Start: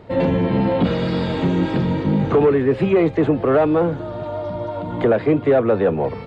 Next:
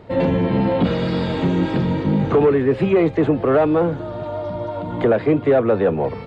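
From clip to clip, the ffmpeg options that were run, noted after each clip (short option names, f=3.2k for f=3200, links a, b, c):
-af anull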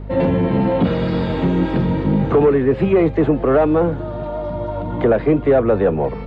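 -af "highshelf=f=4.4k:g=-10.5,aeval=exprs='val(0)+0.0282*(sin(2*PI*50*n/s)+sin(2*PI*2*50*n/s)/2+sin(2*PI*3*50*n/s)/3+sin(2*PI*4*50*n/s)/4+sin(2*PI*5*50*n/s)/5)':c=same,volume=1.5dB"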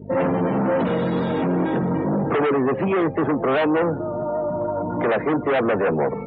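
-filter_complex "[0:a]asplit=2[a][b];[b]aeval=exprs='0.596*sin(PI/2*3.98*val(0)/0.596)':c=same,volume=-9.5dB[c];[a][c]amix=inputs=2:normalize=0,afftdn=nr=29:nf=-27,highpass=170,volume=-7.5dB"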